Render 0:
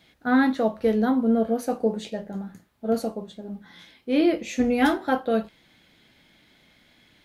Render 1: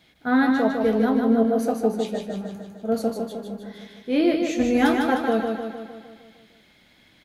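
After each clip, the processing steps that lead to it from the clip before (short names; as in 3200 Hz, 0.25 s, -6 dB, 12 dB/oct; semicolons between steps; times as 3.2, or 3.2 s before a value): feedback echo 0.153 s, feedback 57%, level -4.5 dB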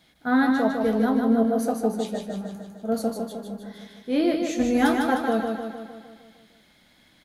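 fifteen-band EQ 100 Hz -5 dB, 400 Hz -4 dB, 2500 Hz -5 dB, 10000 Hz +4 dB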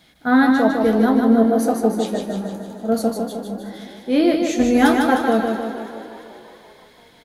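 frequency-shifting echo 0.339 s, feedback 58%, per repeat +49 Hz, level -18 dB; gain +6 dB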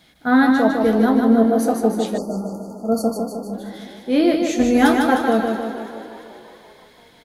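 spectral delete 2.18–3.53, 1400–4300 Hz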